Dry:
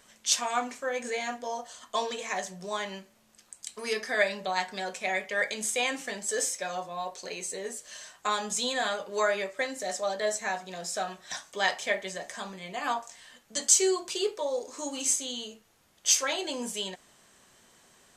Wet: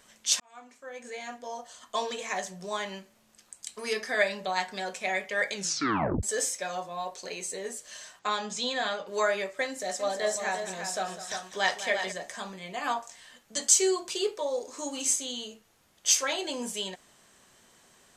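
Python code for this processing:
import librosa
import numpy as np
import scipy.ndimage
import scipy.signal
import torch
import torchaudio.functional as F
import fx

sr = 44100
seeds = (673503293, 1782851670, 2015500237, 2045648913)

y = fx.cheby1_bandpass(x, sr, low_hz=110.0, high_hz=4900.0, order=2, at=(8.19, 9.07))
y = fx.echo_multitap(y, sr, ms=(201, 348), db=(-13.0, -7.5), at=(9.99, 12.11), fade=0.02)
y = fx.edit(y, sr, fx.fade_in_span(start_s=0.4, length_s=1.75),
    fx.tape_stop(start_s=5.54, length_s=0.69), tone=tone)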